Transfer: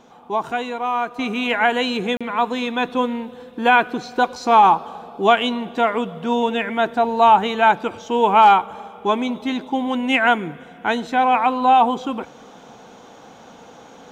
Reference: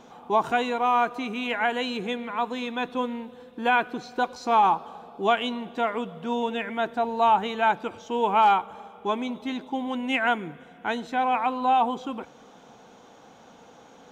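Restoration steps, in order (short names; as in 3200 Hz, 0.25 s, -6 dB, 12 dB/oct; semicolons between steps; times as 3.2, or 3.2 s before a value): interpolate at 2.17, 36 ms; gain correction -7.5 dB, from 1.19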